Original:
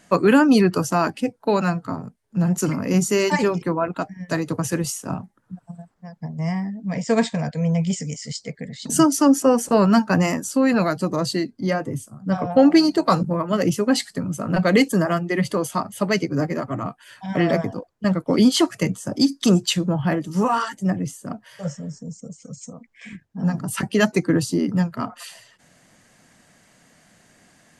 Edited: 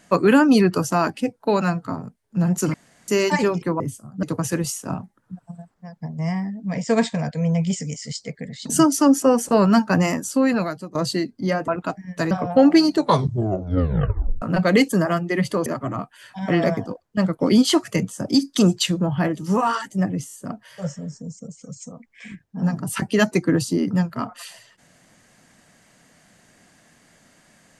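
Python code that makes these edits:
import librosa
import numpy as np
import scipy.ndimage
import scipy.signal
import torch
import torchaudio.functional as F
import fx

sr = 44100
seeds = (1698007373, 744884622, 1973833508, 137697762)

y = fx.edit(x, sr, fx.room_tone_fill(start_s=2.74, length_s=0.34),
    fx.swap(start_s=3.8, length_s=0.63, other_s=11.88, other_length_s=0.43),
    fx.fade_out_to(start_s=10.62, length_s=0.53, floor_db=-20.5),
    fx.tape_stop(start_s=12.92, length_s=1.5),
    fx.cut(start_s=15.66, length_s=0.87),
    fx.stutter(start_s=21.14, slice_s=0.02, count=4), tone=tone)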